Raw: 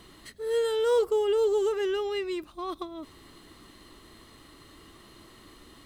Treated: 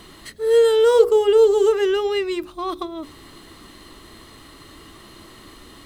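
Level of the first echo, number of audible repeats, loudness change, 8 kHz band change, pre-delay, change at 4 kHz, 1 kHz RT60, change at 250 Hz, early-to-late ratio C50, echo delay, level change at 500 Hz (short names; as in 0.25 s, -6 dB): none, none, +10.5 dB, +8.5 dB, none, +8.5 dB, none, +8.5 dB, none, none, +10.0 dB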